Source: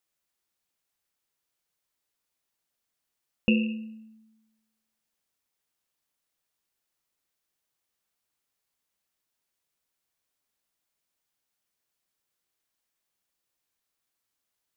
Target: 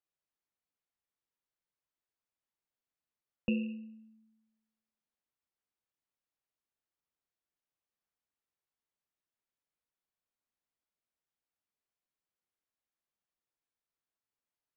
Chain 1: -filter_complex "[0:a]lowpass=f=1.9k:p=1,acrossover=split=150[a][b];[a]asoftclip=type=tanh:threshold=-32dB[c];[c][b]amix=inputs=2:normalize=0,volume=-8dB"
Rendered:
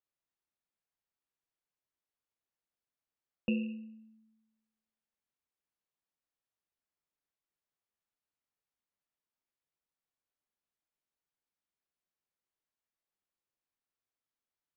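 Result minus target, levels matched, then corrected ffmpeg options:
soft clip: distortion +16 dB
-filter_complex "[0:a]lowpass=f=1.9k:p=1,acrossover=split=150[a][b];[a]asoftclip=type=tanh:threshold=-20dB[c];[c][b]amix=inputs=2:normalize=0,volume=-8dB"

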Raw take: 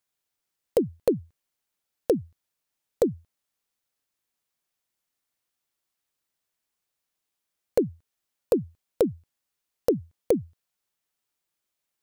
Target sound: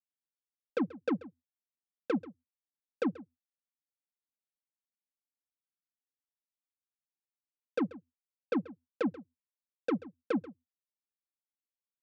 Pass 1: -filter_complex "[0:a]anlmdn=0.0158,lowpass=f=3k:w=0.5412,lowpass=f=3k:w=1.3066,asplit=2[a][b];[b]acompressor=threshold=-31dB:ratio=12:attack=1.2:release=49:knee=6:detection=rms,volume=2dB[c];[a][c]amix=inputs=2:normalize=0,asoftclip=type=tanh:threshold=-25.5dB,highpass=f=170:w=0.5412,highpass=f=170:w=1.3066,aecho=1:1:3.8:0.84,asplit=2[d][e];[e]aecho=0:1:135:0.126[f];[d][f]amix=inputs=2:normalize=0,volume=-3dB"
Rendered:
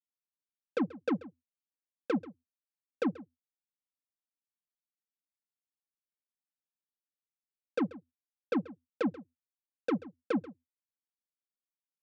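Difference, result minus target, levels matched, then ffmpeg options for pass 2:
compressor: peak gain reduction -9 dB
-filter_complex "[0:a]anlmdn=0.0158,lowpass=f=3k:w=0.5412,lowpass=f=3k:w=1.3066,asplit=2[a][b];[b]acompressor=threshold=-41dB:ratio=12:attack=1.2:release=49:knee=6:detection=rms,volume=2dB[c];[a][c]amix=inputs=2:normalize=0,asoftclip=type=tanh:threshold=-25.5dB,highpass=f=170:w=0.5412,highpass=f=170:w=1.3066,aecho=1:1:3.8:0.84,asplit=2[d][e];[e]aecho=0:1:135:0.126[f];[d][f]amix=inputs=2:normalize=0,volume=-3dB"

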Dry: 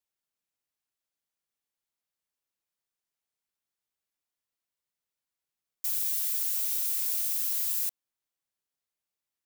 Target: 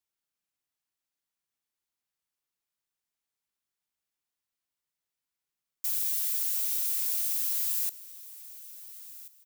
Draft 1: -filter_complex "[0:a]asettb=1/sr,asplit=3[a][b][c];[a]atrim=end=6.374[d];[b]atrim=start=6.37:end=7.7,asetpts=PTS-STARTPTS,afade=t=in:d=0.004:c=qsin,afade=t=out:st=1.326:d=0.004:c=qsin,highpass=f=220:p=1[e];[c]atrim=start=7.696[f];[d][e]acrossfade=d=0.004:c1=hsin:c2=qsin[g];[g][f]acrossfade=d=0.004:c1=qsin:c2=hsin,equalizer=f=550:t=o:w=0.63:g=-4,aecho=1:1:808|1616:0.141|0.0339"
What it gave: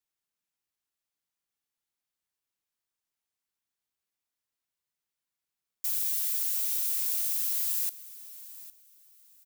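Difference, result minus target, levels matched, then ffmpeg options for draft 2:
echo 0.578 s early
-filter_complex "[0:a]asettb=1/sr,asplit=3[a][b][c];[a]atrim=end=6.374[d];[b]atrim=start=6.37:end=7.7,asetpts=PTS-STARTPTS,afade=t=in:d=0.004:c=qsin,afade=t=out:st=1.326:d=0.004:c=qsin,highpass=f=220:p=1[e];[c]atrim=start=7.696[f];[d][e]acrossfade=d=0.004:c1=hsin:c2=qsin[g];[g][f]acrossfade=d=0.004:c1=qsin:c2=hsin,equalizer=f=550:t=o:w=0.63:g=-4,aecho=1:1:1386|2772:0.141|0.0339"

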